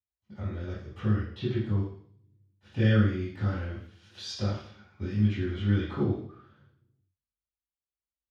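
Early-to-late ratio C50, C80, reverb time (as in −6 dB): 2.0 dB, 6.5 dB, 0.60 s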